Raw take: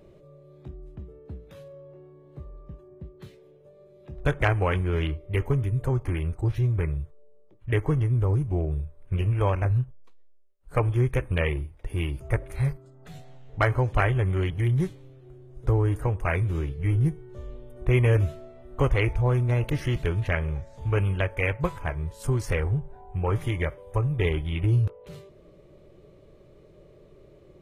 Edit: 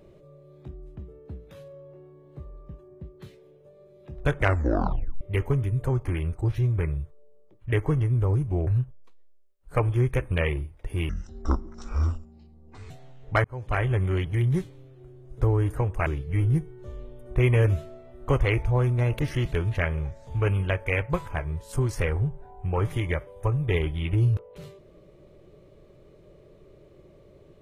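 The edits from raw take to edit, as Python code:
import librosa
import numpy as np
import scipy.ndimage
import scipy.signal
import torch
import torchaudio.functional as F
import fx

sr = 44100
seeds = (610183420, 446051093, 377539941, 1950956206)

y = fx.edit(x, sr, fx.tape_stop(start_s=4.41, length_s=0.8),
    fx.cut(start_s=8.67, length_s=1.0),
    fx.speed_span(start_s=12.09, length_s=1.07, speed=0.59),
    fx.fade_in_span(start_s=13.7, length_s=0.47),
    fx.cut(start_s=16.32, length_s=0.25), tone=tone)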